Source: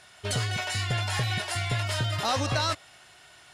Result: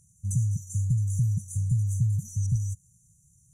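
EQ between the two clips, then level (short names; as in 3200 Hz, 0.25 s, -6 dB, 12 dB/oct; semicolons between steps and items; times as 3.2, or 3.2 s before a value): brick-wall FIR band-stop 200–5800 Hz; high shelf 2700 Hz -8.5 dB; +5.5 dB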